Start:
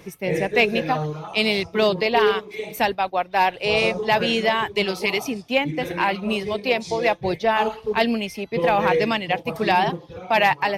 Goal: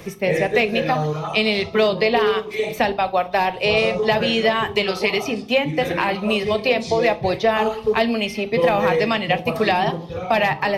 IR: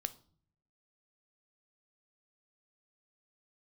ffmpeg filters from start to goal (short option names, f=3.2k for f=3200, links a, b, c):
-filter_complex "[0:a]acrossover=split=410|5300[a][b][c];[a]acompressor=threshold=-31dB:ratio=4[d];[b]acompressor=threshold=-26dB:ratio=4[e];[c]acompressor=threshold=-53dB:ratio=4[f];[d][e][f]amix=inputs=3:normalize=0[g];[1:a]atrim=start_sample=2205[h];[g][h]afir=irnorm=-1:irlink=0,volume=8.5dB"